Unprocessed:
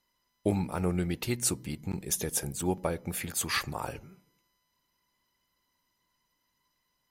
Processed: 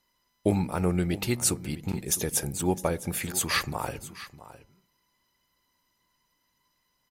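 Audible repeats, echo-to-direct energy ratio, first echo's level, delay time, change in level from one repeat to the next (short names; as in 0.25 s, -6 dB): 1, -16.0 dB, -16.0 dB, 0.659 s, no steady repeat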